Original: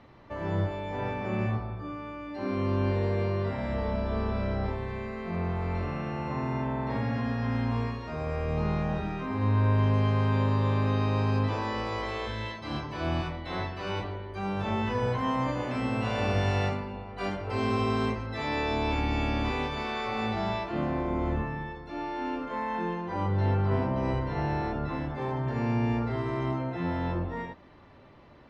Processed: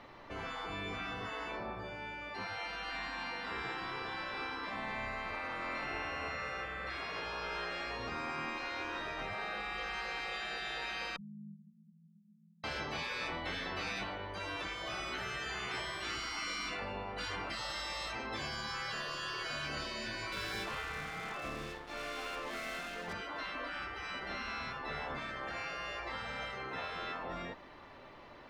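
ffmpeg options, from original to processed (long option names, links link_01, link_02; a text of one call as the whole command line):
ffmpeg -i in.wav -filter_complex "[0:a]asettb=1/sr,asplit=3[link_01][link_02][link_03];[link_01]atrim=end=11.164[link_04];[link_02]atrim=start=11.16:end=12.64,asetpts=PTS-STARTPTS,afade=type=in:duration=0.004:curve=qsin,afade=type=out:start_time=1.476:duration=0.004:curve=qsin,asuperpass=centerf=180:order=12:qfactor=3.8[link_05];[link_03]atrim=start=12.636[link_06];[link_04][link_05]acrossfade=duration=0.004:curve1=hsin:curve2=qsin[link_07];[link_07][link_06]acrossfade=duration=0.004:curve1=qsin:curve2=hsin,asettb=1/sr,asplit=3[link_08][link_09][link_10];[link_08]atrim=end=20.324[link_11];[link_09]atrim=start=20.32:end=23.13,asetpts=PTS-STARTPTS,afade=type=in:duration=0.004:curve=qsin,afade=type=out:start_time=2.806:duration=0.004:curve=qsin,aeval=exprs='sgn(val(0))*max(abs(val(0))-0.00473,0)':channel_layout=same[link_12];[link_10]atrim=start=23.126[link_13];[link_11][link_12]acrossfade=duration=0.004:curve1=hsin:curve2=qsin[link_14];[link_14][link_13]acrossfade=duration=0.004:curve1=qsin:curve2=hsin,equalizer=frequency=100:width=0.31:gain=-12.5,afftfilt=real='re*lt(hypot(re,im),0.0316)':imag='im*lt(hypot(re,im),0.0316)':win_size=1024:overlap=0.75,volume=5dB" out.wav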